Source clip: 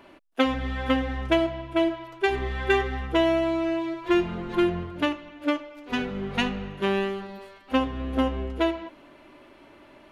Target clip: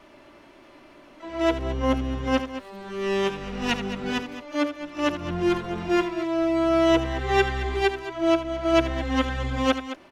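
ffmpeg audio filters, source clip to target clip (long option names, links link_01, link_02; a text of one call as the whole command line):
ffmpeg -i in.wav -filter_complex "[0:a]areverse,aecho=1:1:78.72|215.7:0.282|0.251,asplit=2[link_01][link_02];[link_02]asetrate=88200,aresample=44100,atempo=0.5,volume=-11dB[link_03];[link_01][link_03]amix=inputs=2:normalize=0" out.wav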